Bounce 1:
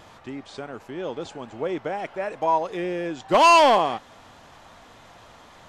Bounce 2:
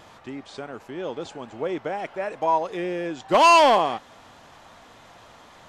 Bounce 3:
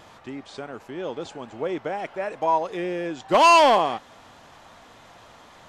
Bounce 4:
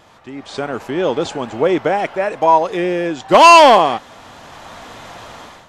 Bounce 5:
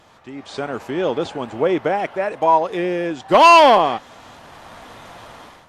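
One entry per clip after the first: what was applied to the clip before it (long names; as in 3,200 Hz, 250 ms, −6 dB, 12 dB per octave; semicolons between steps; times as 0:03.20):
low-shelf EQ 90 Hz −5 dB
no processing that can be heard
automatic gain control gain up to 14 dB
dynamic equaliser 8,300 Hz, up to −6 dB, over −38 dBFS, Q 1.1; level −3 dB; Opus 48 kbit/s 48,000 Hz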